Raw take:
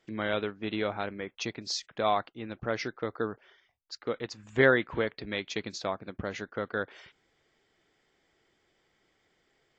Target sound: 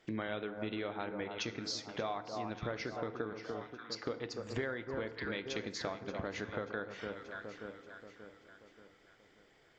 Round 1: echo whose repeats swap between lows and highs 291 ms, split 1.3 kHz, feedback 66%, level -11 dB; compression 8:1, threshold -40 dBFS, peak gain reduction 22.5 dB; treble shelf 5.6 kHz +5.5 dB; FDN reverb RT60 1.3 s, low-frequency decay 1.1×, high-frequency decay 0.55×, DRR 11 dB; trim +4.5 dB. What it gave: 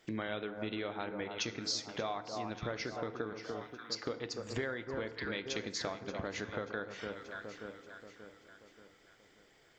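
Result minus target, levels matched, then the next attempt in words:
8 kHz band +4.5 dB
echo whose repeats swap between lows and highs 291 ms, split 1.3 kHz, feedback 66%, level -11 dB; compression 8:1, threshold -40 dBFS, peak gain reduction 22.5 dB; treble shelf 5.6 kHz -4 dB; FDN reverb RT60 1.3 s, low-frequency decay 1.1×, high-frequency decay 0.55×, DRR 11 dB; trim +4.5 dB

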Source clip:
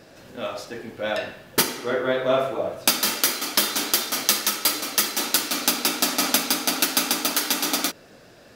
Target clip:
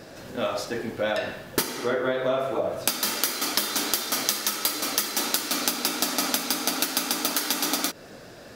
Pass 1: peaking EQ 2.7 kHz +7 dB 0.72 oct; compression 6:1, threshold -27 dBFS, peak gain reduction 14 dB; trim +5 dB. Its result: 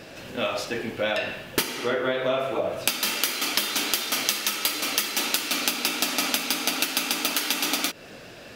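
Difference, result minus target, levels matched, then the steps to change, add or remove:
2 kHz band +3.0 dB
change: peaking EQ 2.7 kHz -2.5 dB 0.72 oct

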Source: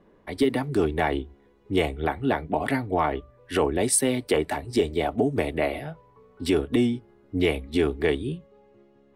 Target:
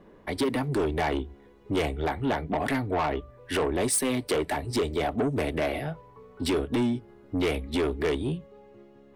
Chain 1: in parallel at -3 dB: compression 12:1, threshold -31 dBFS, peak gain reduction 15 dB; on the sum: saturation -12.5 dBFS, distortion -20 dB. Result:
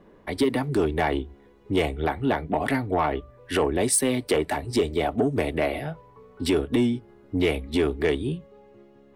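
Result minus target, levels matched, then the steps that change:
saturation: distortion -10 dB
change: saturation -21 dBFS, distortion -10 dB

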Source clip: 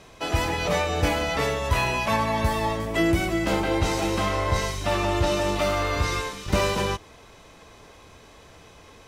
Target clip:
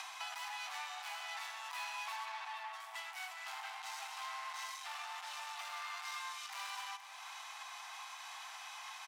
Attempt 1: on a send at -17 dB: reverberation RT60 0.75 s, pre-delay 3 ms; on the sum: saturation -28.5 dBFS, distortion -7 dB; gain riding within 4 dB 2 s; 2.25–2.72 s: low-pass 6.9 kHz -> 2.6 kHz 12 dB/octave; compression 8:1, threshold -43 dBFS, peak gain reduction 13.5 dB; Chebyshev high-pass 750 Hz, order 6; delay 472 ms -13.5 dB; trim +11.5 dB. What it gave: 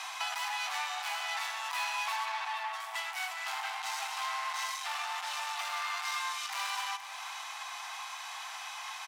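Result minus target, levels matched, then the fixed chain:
compression: peak gain reduction -9 dB
on a send at -17 dB: reverberation RT60 0.75 s, pre-delay 3 ms; on the sum: saturation -28.5 dBFS, distortion -7 dB; gain riding within 4 dB 2 s; 2.25–2.72 s: low-pass 6.9 kHz -> 2.6 kHz 12 dB/octave; compression 8:1, threshold -53 dBFS, peak gain reduction 22.5 dB; Chebyshev high-pass 750 Hz, order 6; delay 472 ms -13.5 dB; trim +11.5 dB

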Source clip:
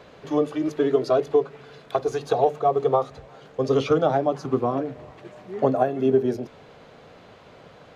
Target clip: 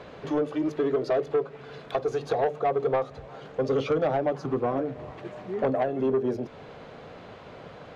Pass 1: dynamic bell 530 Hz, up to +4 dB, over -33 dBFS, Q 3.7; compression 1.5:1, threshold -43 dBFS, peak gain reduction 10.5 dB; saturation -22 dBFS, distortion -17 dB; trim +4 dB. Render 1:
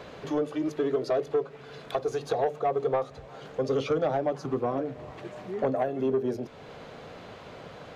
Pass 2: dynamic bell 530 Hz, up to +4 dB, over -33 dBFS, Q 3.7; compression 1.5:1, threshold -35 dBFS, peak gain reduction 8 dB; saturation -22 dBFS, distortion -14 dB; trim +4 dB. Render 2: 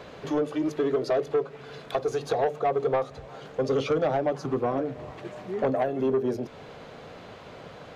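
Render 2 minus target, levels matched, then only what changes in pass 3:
4 kHz band +3.0 dB
add after dynamic bell: low-pass 3.5 kHz 6 dB/octave

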